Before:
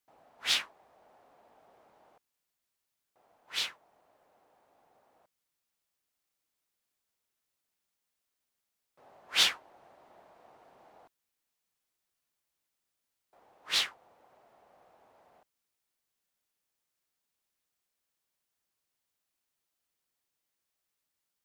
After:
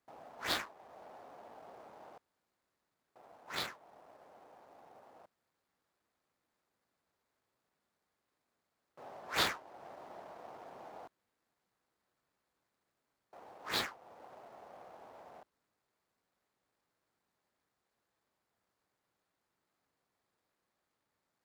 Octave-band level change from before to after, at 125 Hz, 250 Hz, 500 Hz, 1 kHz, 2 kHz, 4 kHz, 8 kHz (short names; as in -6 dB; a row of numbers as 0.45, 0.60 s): n/a, +8.0 dB, +7.0 dB, +4.0 dB, -4.0 dB, -9.5 dB, -9.0 dB